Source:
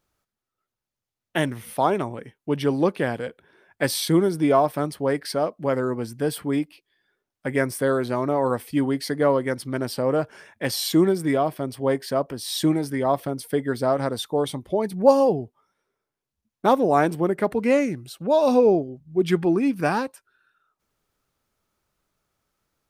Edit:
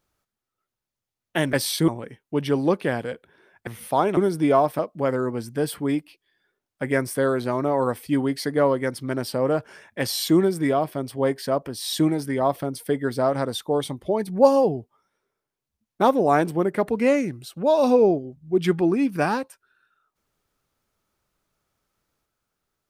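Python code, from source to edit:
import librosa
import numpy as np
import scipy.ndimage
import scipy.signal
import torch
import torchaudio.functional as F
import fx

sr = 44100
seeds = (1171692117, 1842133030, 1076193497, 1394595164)

y = fx.edit(x, sr, fx.swap(start_s=1.53, length_s=0.5, other_s=3.82, other_length_s=0.35),
    fx.cut(start_s=4.79, length_s=0.64), tone=tone)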